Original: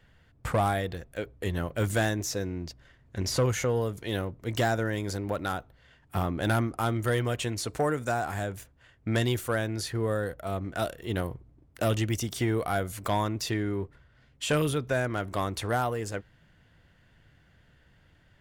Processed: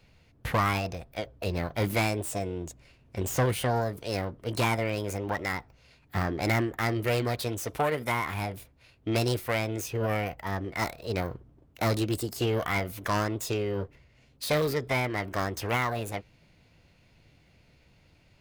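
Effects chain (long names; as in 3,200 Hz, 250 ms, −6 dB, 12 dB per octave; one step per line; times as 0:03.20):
phase distortion by the signal itself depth 0.083 ms
formants moved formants +6 semitones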